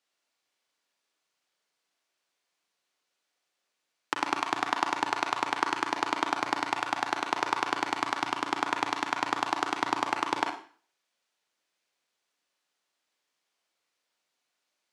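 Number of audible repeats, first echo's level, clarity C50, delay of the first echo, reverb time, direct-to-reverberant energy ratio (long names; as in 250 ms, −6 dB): no echo audible, no echo audible, 5.5 dB, no echo audible, 0.40 s, 3.0 dB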